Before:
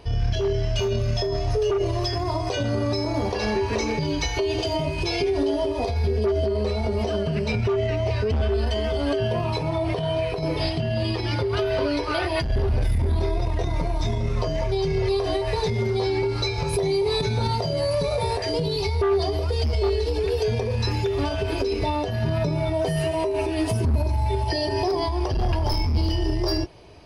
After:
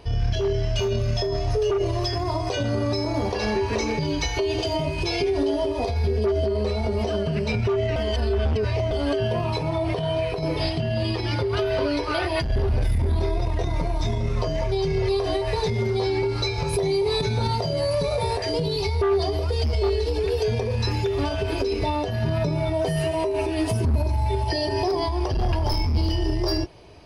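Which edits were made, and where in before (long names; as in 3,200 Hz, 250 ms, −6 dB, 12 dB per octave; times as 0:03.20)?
0:07.96–0:08.91: reverse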